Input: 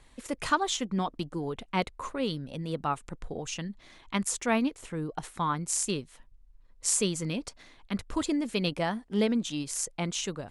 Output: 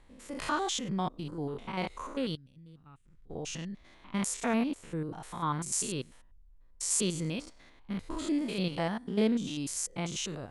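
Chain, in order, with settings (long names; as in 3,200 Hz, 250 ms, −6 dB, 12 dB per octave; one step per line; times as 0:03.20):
spectrum averaged block by block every 100 ms
0:02.35–0:03.30: guitar amp tone stack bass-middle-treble 6-0-2
one half of a high-frequency compander decoder only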